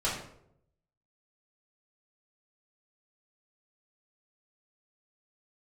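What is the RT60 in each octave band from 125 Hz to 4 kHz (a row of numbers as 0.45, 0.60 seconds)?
1.0, 0.85, 0.85, 0.60, 0.50, 0.45 seconds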